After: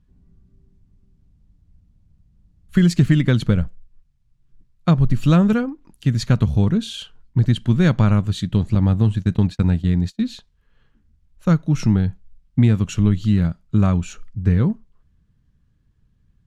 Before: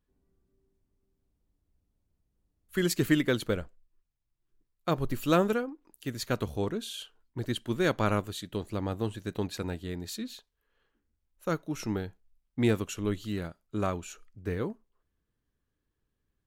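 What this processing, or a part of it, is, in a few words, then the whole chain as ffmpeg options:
jukebox: -filter_complex "[0:a]lowpass=7.1k,lowshelf=f=250:t=q:w=1.5:g=12,acompressor=threshold=-20dB:ratio=4,asettb=1/sr,asplit=3[a][b][c];[a]atrim=end=8.754[d];[b]atrim=start=8.75:end=10.24,asetpts=PTS-STARTPTS,afade=t=in:d=0.004:c=qsin,afade=t=out:st=1.486:d=0.004:c=qsin,agate=range=-33dB:threshold=-30dB:ratio=16:detection=peak[e];[c]atrim=start=10.236[f];[d][e]acrossfade=d=0.004:c1=hsin:c2=qsin[g];[g][f]acrossfade=d=0.004:c1=qsin:c2=hsin,volume=8.5dB"

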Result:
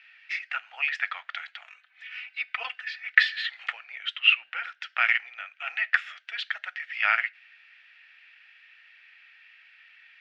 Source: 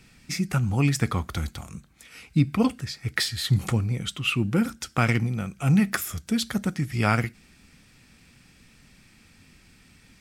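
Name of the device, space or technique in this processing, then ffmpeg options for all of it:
phone earpiece: -filter_complex "[0:a]highpass=340,equalizer=f=340:t=q:w=4:g=-8,equalizer=f=650:t=q:w=4:g=9,equalizer=f=1.1k:t=q:w=4:g=-10,equalizer=f=1.8k:t=q:w=4:g=7,equalizer=f=2.8k:t=q:w=4:g=6,lowpass=f=3.1k:w=0.5412,lowpass=f=3.1k:w=1.3066,asettb=1/sr,asplit=3[a][b][c];[a]atrim=end=1.674[d];[b]atrim=start=1.67:end=3.42,asetpts=PTS-STARTPTS,afade=t=in:d=0.004:c=qsin,afade=t=out:st=1.746:d=0.004:c=qsin,aecho=1:1:4:0.95,atrim=end_sample=77175[e];[c]atrim=start=3.416[f];[d][e]acrossfade=d=0.004:c1=hsin:c2=qsin[g];[g][f]acrossfade=d=0.004:c1=qsin:c2=hsin,highpass=f=1.2k:w=0.5412,highpass=f=1.2k:w=1.3066,volume=3dB"

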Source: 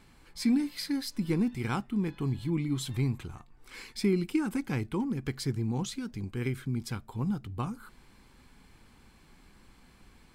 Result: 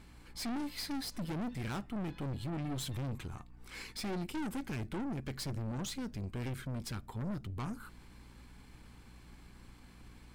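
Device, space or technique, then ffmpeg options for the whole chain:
valve amplifier with mains hum: -af "aeval=exprs='(tanh(70.8*val(0)+0.45)-tanh(0.45))/70.8':c=same,aeval=exprs='val(0)+0.00126*(sin(2*PI*60*n/s)+sin(2*PI*2*60*n/s)/2+sin(2*PI*3*60*n/s)/3+sin(2*PI*4*60*n/s)/4+sin(2*PI*5*60*n/s)/5)':c=same,volume=1.5dB"

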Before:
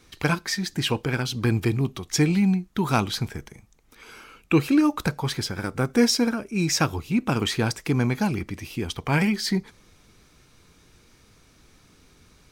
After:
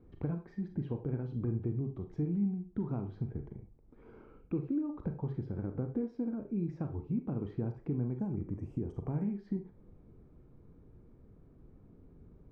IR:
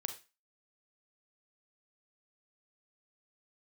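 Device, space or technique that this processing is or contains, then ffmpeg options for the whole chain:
television next door: -filter_complex "[0:a]acompressor=threshold=-33dB:ratio=4,lowpass=450[a];[1:a]atrim=start_sample=2205[b];[a][b]afir=irnorm=-1:irlink=0,asettb=1/sr,asplit=3[c][d][e];[c]atrim=end=8.194[f];[d]atrim=start=8.19:end=9.23,asetpts=PTS-STARTPTS,afade=t=in:d=0.004:c=qsin,afade=t=out:st=1.036:d=0.004:c=qsin,highshelf=f=5.5k:t=q:w=3:g=12.5[g];[e]atrim=start=9.226[h];[f][g]acrossfade=d=0.004:c1=hsin:c2=qsin[i];[i][h]acrossfade=d=0.004:c1=qsin:c2=hsin,volume=1.5dB"

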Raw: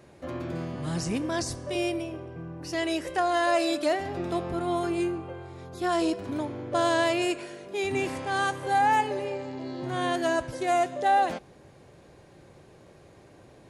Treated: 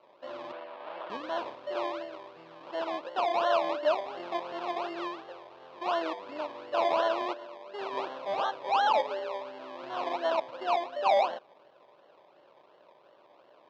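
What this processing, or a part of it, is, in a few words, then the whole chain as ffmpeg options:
circuit-bent sampling toy: -filter_complex "[0:a]acrusher=samples=25:mix=1:aa=0.000001:lfo=1:lforange=15:lforate=2.8,highpass=490,equalizer=f=600:t=q:w=4:g=8,equalizer=f=980:t=q:w=4:g=7,equalizer=f=2k:t=q:w=4:g=-6,lowpass=f=4k:w=0.5412,lowpass=f=4k:w=1.3066,asettb=1/sr,asplit=3[a][b][c];[a]atrim=end=0.524[d];[b]atrim=start=0.52:end=1.1,asetpts=PTS-STARTPTS,afade=t=in:d=0.004:c=qsin,afade=t=out:st=0.576:d=0.004:c=qsin,acrossover=split=330 3900:gain=0.0794 1 0.0631[e][f][g];[e][f][g]amix=inputs=3:normalize=0[h];[c]atrim=start=1.096[i];[d][h]acrossfade=d=0.004:c1=hsin:c2=qsin[j];[j][i]acrossfade=d=0.004:c1=qsin:c2=hsin,volume=-5dB"

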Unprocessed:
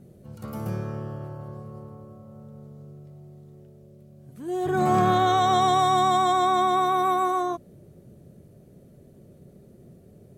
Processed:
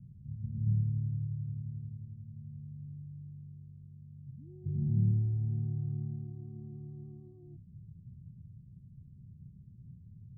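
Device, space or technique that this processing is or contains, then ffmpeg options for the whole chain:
the neighbour's flat through the wall: -filter_complex "[0:a]lowpass=f=160:w=0.5412,lowpass=f=160:w=1.3066,equalizer=f=100:t=o:w=0.82:g=4.5,bandreject=f=1k:w=5.9,asettb=1/sr,asplit=3[a][b][c];[a]atrim=end=5.584[d];[b]atrim=start=5.58:end=6.07,asetpts=PTS-STARTPTS,afade=t=in:d=0.004:c=qsin,afade=t=out:st=0.486:d=0.004:c=qsin,equalizer=f=1.6k:t=o:w=0.57:g=14.5[e];[c]atrim=start=6.066[f];[d][e]acrossfade=d=0.004:c1=hsin:c2=qsin[g];[g][f]acrossfade=d=0.004:c1=qsin:c2=hsin"

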